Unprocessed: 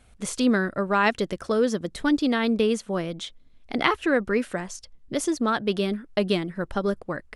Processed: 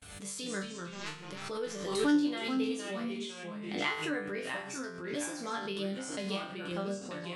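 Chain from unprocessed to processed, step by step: HPF 50 Hz 24 dB/oct; gate -59 dBFS, range -45 dB; high shelf 2000 Hz +7 dB; 0.63–1.29 power-law curve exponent 3; resonator bank G2 fifth, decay 0.38 s; echoes that change speed 0.181 s, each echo -2 st, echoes 3, each echo -6 dB; backwards sustainer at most 48 dB/s; gain -2 dB

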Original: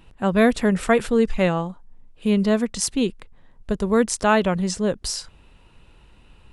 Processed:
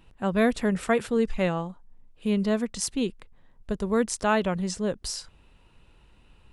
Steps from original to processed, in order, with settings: 0.75–1.17 HPF 45 Hz; gain -5.5 dB

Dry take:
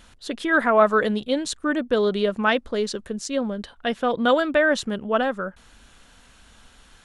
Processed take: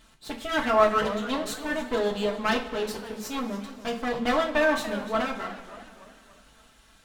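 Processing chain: minimum comb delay 4.5 ms; two-slope reverb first 0.28 s, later 2.3 s, from -18 dB, DRR 0.5 dB; warbling echo 0.289 s, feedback 48%, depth 162 cents, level -15 dB; gain -6.5 dB

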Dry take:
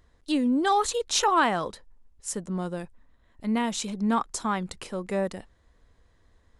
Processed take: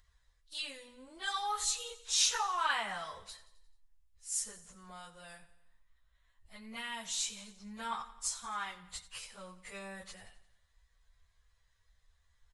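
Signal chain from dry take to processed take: passive tone stack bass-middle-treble 10-0-10; plain phase-vocoder stretch 1.9×; feedback echo 87 ms, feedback 54%, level -16 dB

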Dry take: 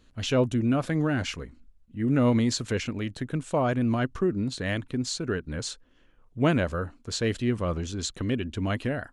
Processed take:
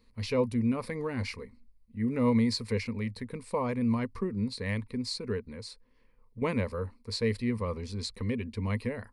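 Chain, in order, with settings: ripple EQ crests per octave 0.91, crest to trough 14 dB; 5.46–6.42 compressor 3:1, threshold -34 dBFS, peak gain reduction 8 dB; gain -7 dB

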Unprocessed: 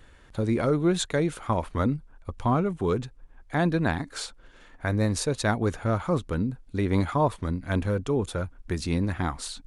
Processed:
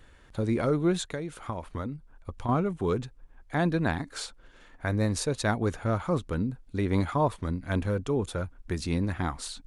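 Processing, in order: 0.96–2.49 compressor 6:1, threshold -29 dBFS, peak gain reduction 9 dB; gain -2 dB

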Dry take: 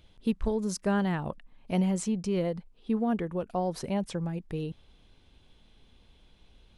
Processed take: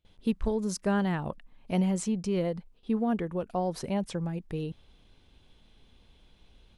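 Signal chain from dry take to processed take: gate with hold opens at -49 dBFS

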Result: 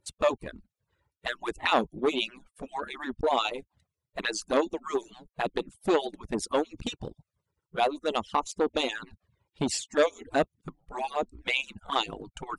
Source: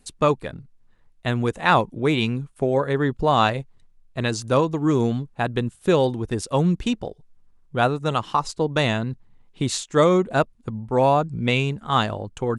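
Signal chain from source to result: median-filter separation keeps percussive; envelope flanger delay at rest 2.2 ms, full sweep at -21 dBFS; core saturation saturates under 1000 Hz

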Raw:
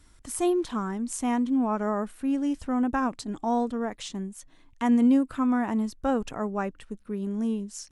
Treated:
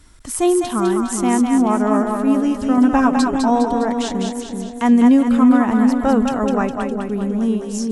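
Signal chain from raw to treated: 2.77–3.44 comb 7.1 ms, depth 97%; split-band echo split 560 Hz, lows 0.388 s, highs 0.204 s, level -4 dB; gain +8.5 dB

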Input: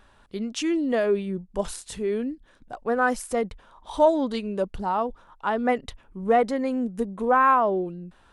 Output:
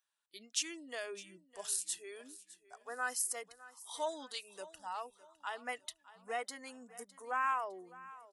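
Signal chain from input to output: spectral noise reduction 19 dB; differentiator; notch 540 Hz, Q 12; feedback echo 0.608 s, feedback 39%, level -18.5 dB; gain +1.5 dB

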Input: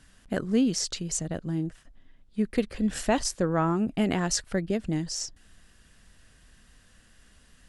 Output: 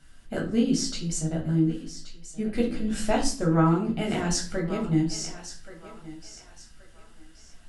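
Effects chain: thinning echo 1.127 s, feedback 34%, high-pass 490 Hz, level -12.5 dB; reverb RT60 0.40 s, pre-delay 3 ms, DRR -2.5 dB; gain -5 dB

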